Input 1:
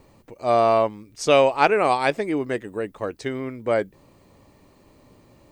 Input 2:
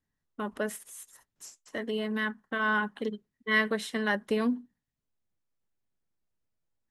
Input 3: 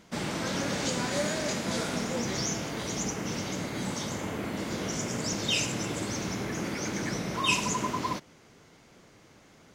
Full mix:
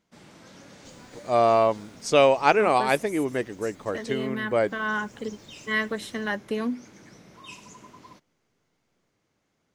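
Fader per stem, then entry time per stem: -1.5, -0.5, -18.0 dB; 0.85, 2.20, 0.00 s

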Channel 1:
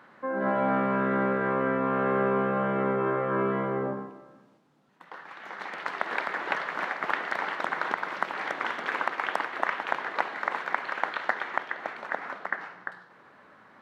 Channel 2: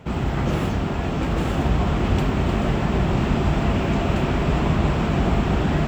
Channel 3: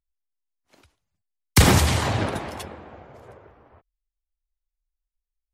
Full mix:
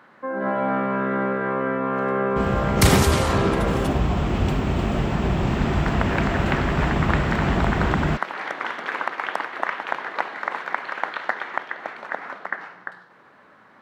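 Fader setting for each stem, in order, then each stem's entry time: +2.5, -1.5, -1.5 dB; 0.00, 2.30, 1.25 s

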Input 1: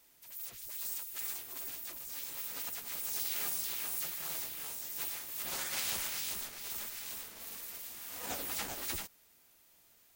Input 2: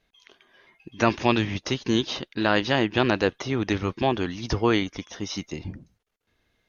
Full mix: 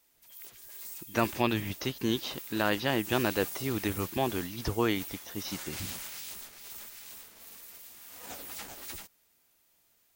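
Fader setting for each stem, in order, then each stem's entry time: -4.0, -6.5 dB; 0.00, 0.15 s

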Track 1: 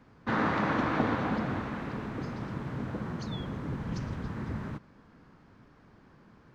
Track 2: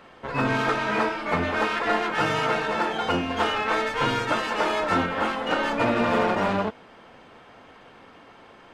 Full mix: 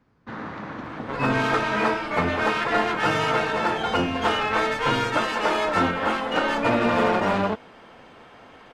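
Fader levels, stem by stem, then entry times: -6.5, +1.5 dB; 0.00, 0.85 s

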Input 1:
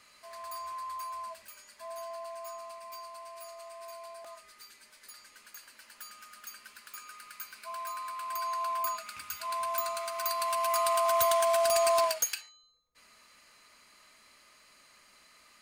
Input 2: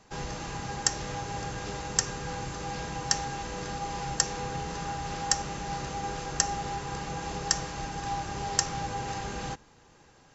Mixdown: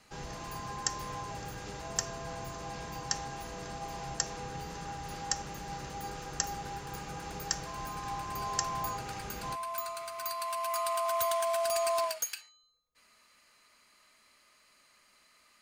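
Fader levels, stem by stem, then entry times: -4.5, -6.5 dB; 0.00, 0.00 s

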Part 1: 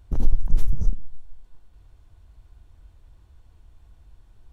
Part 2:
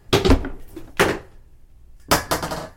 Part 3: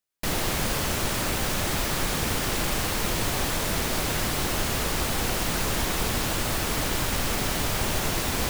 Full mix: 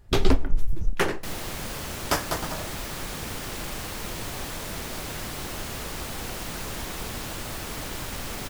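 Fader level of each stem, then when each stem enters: -4.5, -7.5, -7.5 dB; 0.00, 0.00, 1.00 s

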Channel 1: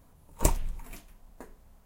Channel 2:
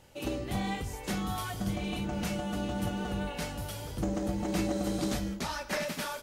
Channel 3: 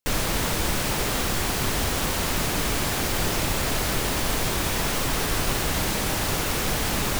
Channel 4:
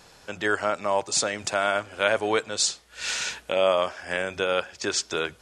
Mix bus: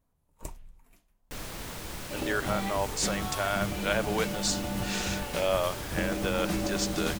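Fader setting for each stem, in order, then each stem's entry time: -16.5, -0.5, -14.5, -6.0 dB; 0.00, 1.95, 1.25, 1.85 s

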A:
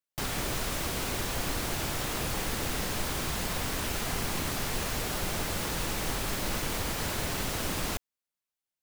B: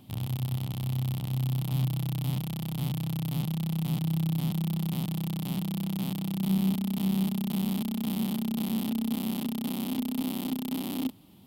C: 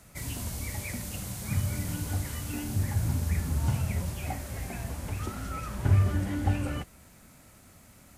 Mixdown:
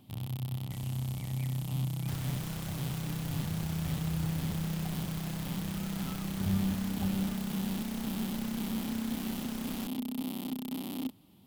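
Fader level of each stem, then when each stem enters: -13.0, -5.0, -13.5 dB; 1.90, 0.00, 0.55 s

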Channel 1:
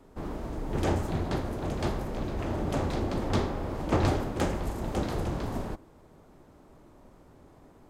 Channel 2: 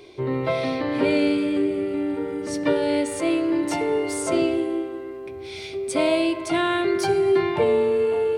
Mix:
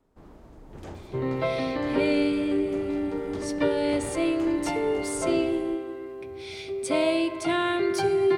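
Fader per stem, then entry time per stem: -13.5, -3.0 dB; 0.00, 0.95 s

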